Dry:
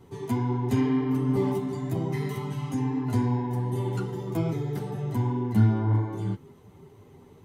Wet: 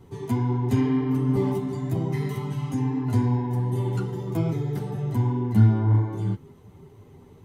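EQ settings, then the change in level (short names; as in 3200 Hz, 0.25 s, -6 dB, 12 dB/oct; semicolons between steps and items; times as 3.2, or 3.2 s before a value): low shelf 130 Hz +7 dB; 0.0 dB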